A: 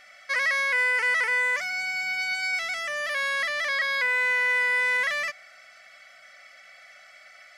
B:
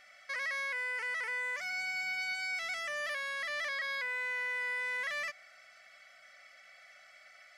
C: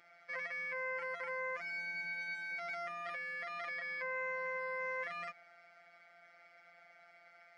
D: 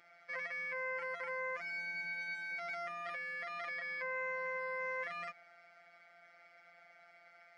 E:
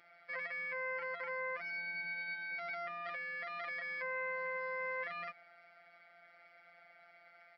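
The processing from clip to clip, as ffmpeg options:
ffmpeg -i in.wav -af "alimiter=limit=-22dB:level=0:latency=1:release=118,volume=-7dB" out.wav
ffmpeg -i in.wav -af "afreqshift=31,bandpass=frequency=250:width_type=q:width=0.53:csg=0,afftfilt=real='hypot(re,im)*cos(PI*b)':imag='0':win_size=1024:overlap=0.75,volume=10.5dB" out.wav
ffmpeg -i in.wav -af anull out.wav
ffmpeg -i in.wav -af "aresample=11025,aresample=44100" out.wav

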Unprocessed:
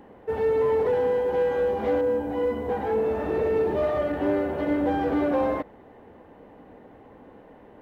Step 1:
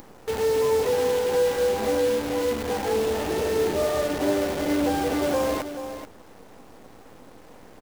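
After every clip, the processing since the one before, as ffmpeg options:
ffmpeg -i in.wav -filter_complex "[0:a]acompressor=mode=upward:threshold=-38dB:ratio=2.5,acrusher=bits=6:dc=4:mix=0:aa=0.000001,asplit=2[link_01][link_02];[link_02]aecho=0:1:432:0.299[link_03];[link_01][link_03]amix=inputs=2:normalize=0" out.wav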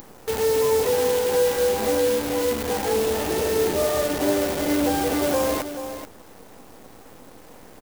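ffmpeg -i in.wav -af "crystalizer=i=1:c=0,volume=1.5dB" out.wav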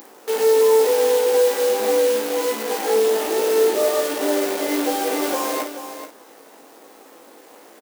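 ffmpeg -i in.wav -filter_complex "[0:a]highpass=frequency=280:width=0.5412,highpass=frequency=280:width=1.3066,asplit=2[link_01][link_02];[link_02]aecho=0:1:18|54:0.596|0.473[link_03];[link_01][link_03]amix=inputs=2:normalize=0" out.wav

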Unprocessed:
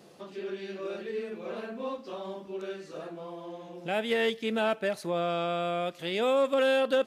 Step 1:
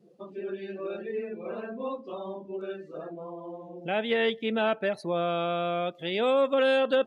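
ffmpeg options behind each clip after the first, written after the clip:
ffmpeg -i in.wav -af "afftdn=noise_reduction=22:noise_floor=-45,volume=1.5dB" out.wav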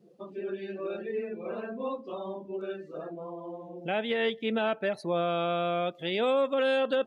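ffmpeg -i in.wav -af "alimiter=limit=-18dB:level=0:latency=1:release=271" out.wav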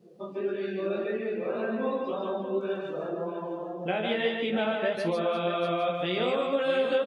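ffmpeg -i in.wav -filter_complex "[0:a]acompressor=threshold=-30dB:ratio=6,flanger=delay=16.5:depth=4.8:speed=1.8,asplit=2[link_01][link_02];[link_02]aecho=0:1:49|147|348|641|808:0.224|0.668|0.224|0.282|0.141[link_03];[link_01][link_03]amix=inputs=2:normalize=0,volume=7dB" out.wav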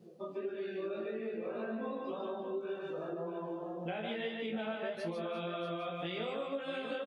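ffmpeg -i in.wav -filter_complex "[0:a]areverse,acompressor=mode=upward:threshold=-36dB:ratio=2.5,areverse,asplit=2[link_01][link_02];[link_02]adelay=18,volume=-4dB[link_03];[link_01][link_03]amix=inputs=2:normalize=0,acompressor=threshold=-32dB:ratio=3,volume=-5dB" out.wav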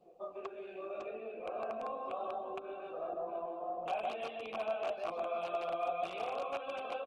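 ffmpeg -i in.wav -filter_complex "[0:a]aeval=exprs='(mod(29.9*val(0)+1,2)-1)/29.9':channel_layout=same,asplit=3[link_01][link_02][link_03];[link_01]bandpass=frequency=730:width_type=q:width=8,volume=0dB[link_04];[link_02]bandpass=frequency=1090:width_type=q:width=8,volume=-6dB[link_05];[link_03]bandpass=frequency=2440:width_type=q:width=8,volume=-9dB[link_06];[link_04][link_05][link_06]amix=inputs=3:normalize=0,volume=10.5dB" -ar 48000 -c:a libopus -b:a 16k out.opus

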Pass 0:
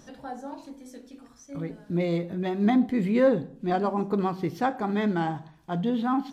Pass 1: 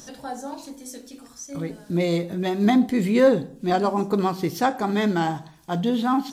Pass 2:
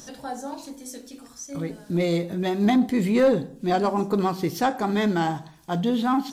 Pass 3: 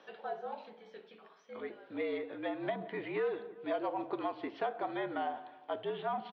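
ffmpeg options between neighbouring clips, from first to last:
ffmpeg -i in.wav -af "bass=frequency=250:gain=-2,treble=frequency=4000:gain=12,volume=4.5dB" out.wav
ffmpeg -i in.wav -af "asoftclip=type=tanh:threshold=-11dB" out.wav
ffmpeg -i in.wav -filter_complex "[0:a]asplit=2[link_01][link_02];[link_02]adelay=173,lowpass=frequency=1600:poles=1,volume=-20dB,asplit=2[link_03][link_04];[link_04]adelay=173,lowpass=frequency=1600:poles=1,volume=0.52,asplit=2[link_05][link_06];[link_06]adelay=173,lowpass=frequency=1600:poles=1,volume=0.52,asplit=2[link_07][link_08];[link_08]adelay=173,lowpass=frequency=1600:poles=1,volume=0.52[link_09];[link_01][link_03][link_05][link_07][link_09]amix=inputs=5:normalize=0,highpass=frequency=450:width_type=q:width=0.5412,highpass=frequency=450:width_type=q:width=1.307,lowpass=frequency=3300:width_type=q:width=0.5176,lowpass=frequency=3300:width_type=q:width=0.7071,lowpass=frequency=3300:width_type=q:width=1.932,afreqshift=-61,acrossover=split=850|2500[link_10][link_11][link_12];[link_10]acompressor=threshold=-29dB:ratio=4[link_13];[link_11]acompressor=threshold=-40dB:ratio=4[link_14];[link_12]acompressor=threshold=-51dB:ratio=4[link_15];[link_13][link_14][link_15]amix=inputs=3:normalize=0,volume=-4.5dB" out.wav

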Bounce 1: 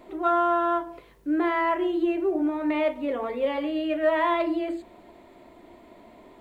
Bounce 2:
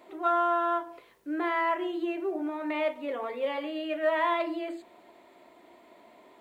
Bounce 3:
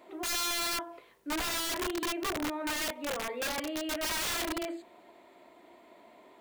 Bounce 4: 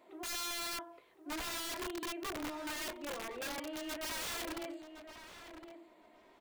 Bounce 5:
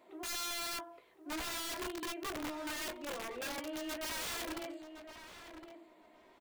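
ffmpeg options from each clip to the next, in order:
ffmpeg -i in.wav -af "highpass=frequency=560:poles=1,volume=-1.5dB" out.wav
ffmpeg -i in.wav -af "aeval=exprs='(mod(22.4*val(0)+1,2)-1)/22.4':channel_layout=same,volume=-1dB" out.wav
ffmpeg -i in.wav -filter_complex "[0:a]asplit=2[link_01][link_02];[link_02]adelay=1062,lowpass=frequency=2700:poles=1,volume=-9.5dB,asplit=2[link_03][link_04];[link_04]adelay=1062,lowpass=frequency=2700:poles=1,volume=0.17[link_05];[link_01][link_03][link_05]amix=inputs=3:normalize=0,volume=-7.5dB" out.wav
ffmpeg -i in.wav -filter_complex "[0:a]asplit=2[link_01][link_02];[link_02]adelay=16,volume=-13dB[link_03];[link_01][link_03]amix=inputs=2:normalize=0" out.wav

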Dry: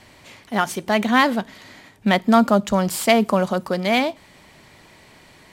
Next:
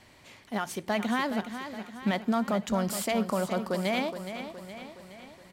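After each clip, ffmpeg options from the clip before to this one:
ffmpeg -i in.wav -af "alimiter=limit=-11dB:level=0:latency=1:release=148,aecho=1:1:418|836|1254|1672|2090|2508:0.316|0.171|0.0922|0.0498|0.0269|0.0145,volume=-7.5dB" out.wav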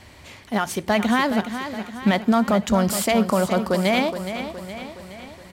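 ffmpeg -i in.wav -af "equalizer=frequency=73:width_type=o:width=0.59:gain=13,volume=8.5dB" out.wav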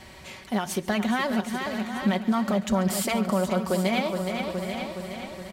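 ffmpeg -i in.wav -filter_complex "[0:a]aecho=1:1:5.3:0.54,acompressor=threshold=-27dB:ratio=2,asplit=2[link_01][link_02];[link_02]aecho=0:1:138|769:0.112|0.299[link_03];[link_01][link_03]amix=inputs=2:normalize=0" out.wav

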